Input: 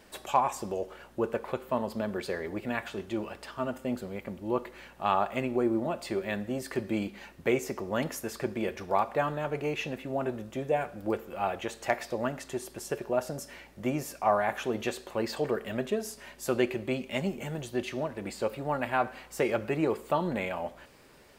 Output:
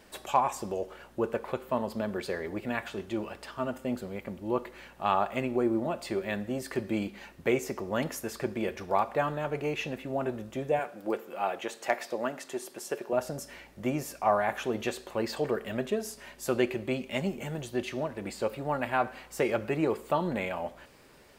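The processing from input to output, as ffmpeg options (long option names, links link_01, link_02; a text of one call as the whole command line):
ffmpeg -i in.wav -filter_complex "[0:a]asettb=1/sr,asplit=3[link_01][link_02][link_03];[link_01]atrim=end=10.794[link_04];[link_02]atrim=start=10.79:end=13.13,asetpts=PTS-STARTPTS,afade=type=in:duration=0.004:curve=qsin,afade=type=out:start_time=2.336:duration=0.004:curve=qsin,highpass=250[link_05];[link_03]atrim=start=13.126[link_06];[link_04][link_05]acrossfade=duration=0.004:curve1=hsin:curve2=qsin[link_07];[link_07][link_06]acrossfade=duration=0.004:curve1=qsin:curve2=hsin" out.wav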